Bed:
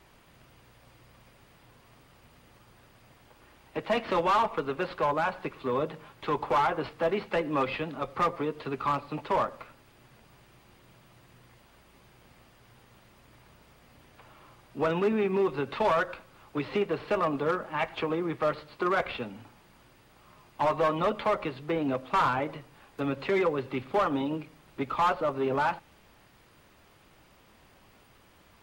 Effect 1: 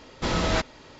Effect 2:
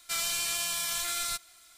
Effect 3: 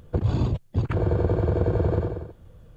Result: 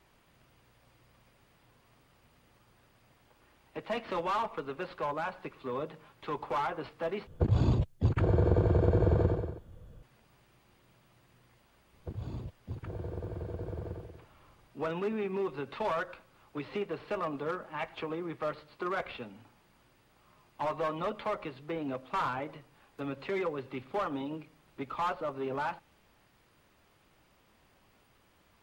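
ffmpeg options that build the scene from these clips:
-filter_complex "[3:a]asplit=2[s0][s1];[0:a]volume=0.447,asplit=2[s2][s3];[s2]atrim=end=7.274[s4];[s0]atrim=end=2.76,asetpts=PTS-STARTPTS,volume=0.708[s5];[s3]atrim=start=10.026[s6];[s1]atrim=end=2.76,asetpts=PTS-STARTPTS,volume=0.15,afade=t=in:d=0.004:c=hsin,afade=t=out:st=2.756:d=0.004:c=hsin,adelay=11930[s7];[s4][s5]acrossfade=d=0.004:c1=hsin:c2=hsin[s8];[s8][s6]acrossfade=d=0.004:c1=hsin:c2=hsin[s9];[s9][s7]amix=inputs=2:normalize=0"

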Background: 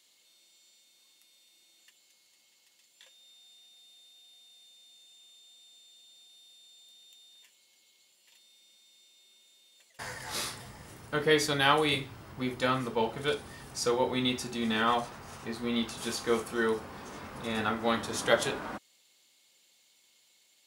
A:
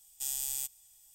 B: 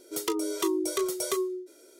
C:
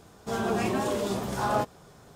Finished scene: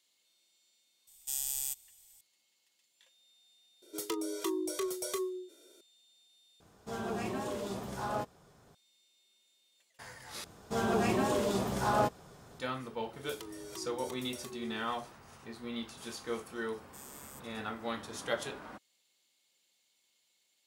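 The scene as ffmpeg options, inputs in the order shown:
-filter_complex "[1:a]asplit=2[s0][s1];[2:a]asplit=2[s2][s3];[3:a]asplit=2[s4][s5];[0:a]volume=0.355[s6];[s2]asoftclip=type=tanh:threshold=0.141[s7];[s3]acompressor=threshold=0.0158:ratio=6:attack=3.2:release=140:knee=1:detection=peak[s8];[s6]asplit=3[s9][s10][s11];[s9]atrim=end=6.604[s12];[s4]atrim=end=2.15,asetpts=PTS-STARTPTS,volume=0.355[s13];[s10]atrim=start=8.746:end=10.444[s14];[s5]atrim=end=2.15,asetpts=PTS-STARTPTS,volume=0.794[s15];[s11]atrim=start=12.586[s16];[s0]atrim=end=1.14,asetpts=PTS-STARTPTS,volume=0.944,afade=t=in:d=0.004:c=hsin,afade=t=out:st=1.136:d=0.004:c=hsin,adelay=1070[s17];[s7]atrim=end=1.99,asetpts=PTS-STARTPTS,volume=0.501,afade=t=in:d=0.004:c=hsin,afade=t=out:st=1.986:d=0.004:c=hsin,adelay=3820[s18];[s8]atrim=end=1.99,asetpts=PTS-STARTPTS,volume=0.447,afade=t=in:d=0.004:c=hsin,afade=t=out:st=1.986:d=0.004:c=hsin,adelay=13130[s19];[s1]atrim=end=1.14,asetpts=PTS-STARTPTS,volume=0.141,afade=t=in:d=0.004:c=hsin,afade=t=out:st=1.136:d=0.004:c=hsin,adelay=16730[s20];[s12][s13]acrossfade=d=0.004:c1=hsin:c2=hsin[s21];[s21][s14]acrossfade=d=0.004:c1=hsin:c2=hsin[s22];[s22][s15]acrossfade=d=0.004:c1=hsin:c2=hsin[s23];[s23][s16]acrossfade=d=0.004:c1=hsin:c2=hsin[s24];[s24][s17][s18][s19][s20]amix=inputs=5:normalize=0"

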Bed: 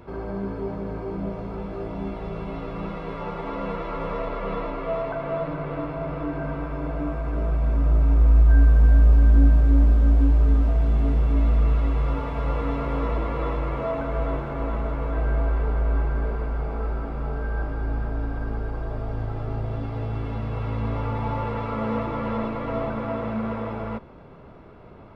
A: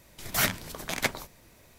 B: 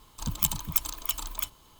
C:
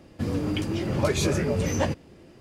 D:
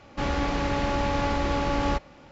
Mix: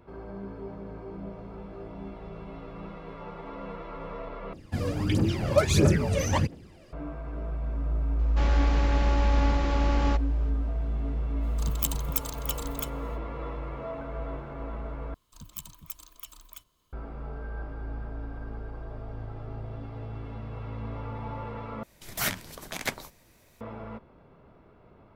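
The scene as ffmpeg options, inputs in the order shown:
-filter_complex "[2:a]asplit=2[s0][s1];[0:a]volume=0.335[s2];[3:a]aphaser=in_gain=1:out_gain=1:delay=1.9:decay=0.66:speed=1.5:type=triangular[s3];[s1]asuperstop=centerf=840:order=4:qfactor=6.1[s4];[s2]asplit=4[s5][s6][s7][s8];[s5]atrim=end=4.534[s9];[s3]atrim=end=2.4,asetpts=PTS-STARTPTS,volume=0.794[s10];[s6]atrim=start=6.926:end=15.144[s11];[s4]atrim=end=1.79,asetpts=PTS-STARTPTS,volume=0.188[s12];[s7]atrim=start=16.926:end=21.834[s13];[1:a]atrim=end=1.78,asetpts=PTS-STARTPTS,volume=0.668[s14];[s8]atrim=start=23.606[s15];[4:a]atrim=end=2.31,asetpts=PTS-STARTPTS,volume=0.631,afade=t=in:d=0.004:c=hsin,afade=t=out:st=2.306:d=0.004:c=hsin,adelay=8190[s16];[s0]atrim=end=1.79,asetpts=PTS-STARTPTS,volume=0.668,afade=t=in:d=0.05,afade=t=out:st=1.74:d=0.05,adelay=11400[s17];[s9][s10]acrossfade=d=0.004:c1=hsin:c2=hsin[s18];[s18][s11]acrossfade=d=0.004:c1=hsin:c2=hsin[s19];[s19][s12]acrossfade=d=0.004:c1=hsin:c2=hsin[s20];[s20][s13]acrossfade=d=0.004:c1=hsin:c2=hsin[s21];[s21][s14]acrossfade=d=0.004:c1=hsin:c2=hsin[s22];[s22][s15]acrossfade=d=0.004:c1=hsin:c2=hsin[s23];[s23][s16][s17]amix=inputs=3:normalize=0"

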